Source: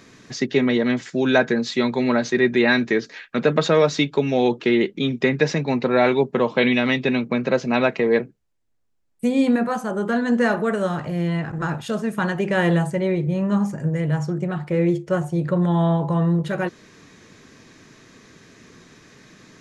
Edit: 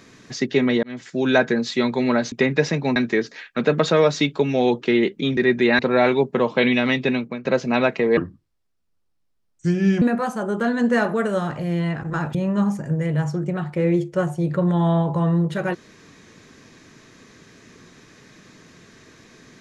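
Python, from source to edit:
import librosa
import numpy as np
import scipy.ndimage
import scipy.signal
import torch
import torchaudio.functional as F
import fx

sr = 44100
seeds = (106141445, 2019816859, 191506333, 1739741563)

y = fx.edit(x, sr, fx.fade_in_span(start_s=0.83, length_s=0.55, curve='qsin'),
    fx.swap(start_s=2.32, length_s=0.42, other_s=5.15, other_length_s=0.64),
    fx.fade_out_to(start_s=7.1, length_s=0.35, floor_db=-17.0),
    fx.speed_span(start_s=8.17, length_s=1.33, speed=0.72),
    fx.cut(start_s=11.83, length_s=1.46), tone=tone)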